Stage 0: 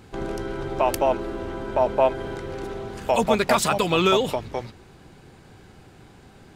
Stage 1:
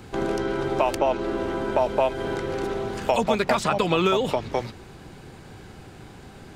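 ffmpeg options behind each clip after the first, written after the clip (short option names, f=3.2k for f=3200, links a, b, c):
-filter_complex "[0:a]acrossover=split=140|2500|7800[a][b][c][d];[a]acompressor=threshold=-44dB:ratio=4[e];[b]acompressor=threshold=-24dB:ratio=4[f];[c]acompressor=threshold=-40dB:ratio=4[g];[d]acompressor=threshold=-60dB:ratio=4[h];[e][f][g][h]amix=inputs=4:normalize=0,volume=5dB"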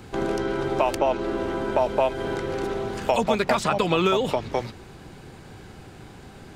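-af anull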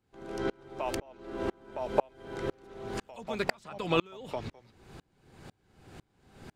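-af "aeval=exprs='val(0)*pow(10,-35*if(lt(mod(-2*n/s,1),2*abs(-2)/1000),1-mod(-2*n/s,1)/(2*abs(-2)/1000),(mod(-2*n/s,1)-2*abs(-2)/1000)/(1-2*abs(-2)/1000))/20)':c=same,volume=-1dB"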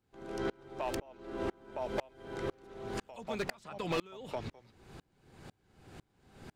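-af "asoftclip=type=hard:threshold=-26dB,volume=-2dB"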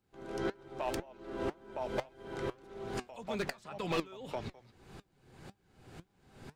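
-af "flanger=delay=4.9:depth=3.3:regen=75:speed=1.8:shape=sinusoidal,volume=4.5dB"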